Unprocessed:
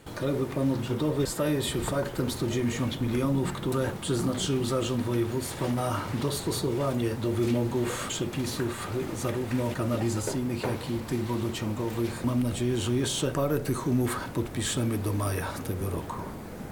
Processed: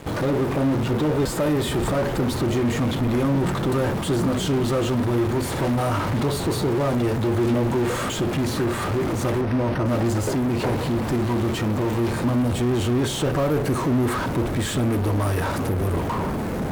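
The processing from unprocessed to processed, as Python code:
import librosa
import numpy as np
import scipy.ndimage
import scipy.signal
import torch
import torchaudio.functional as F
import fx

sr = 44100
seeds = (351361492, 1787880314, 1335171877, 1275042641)

p1 = fx.fuzz(x, sr, gain_db=46.0, gate_db=-52.0)
p2 = x + (p1 * librosa.db_to_amplitude(-11.5))
p3 = fx.high_shelf(p2, sr, hz=2400.0, db=-9.0)
y = fx.resample_linear(p3, sr, factor=6, at=(9.41, 9.86))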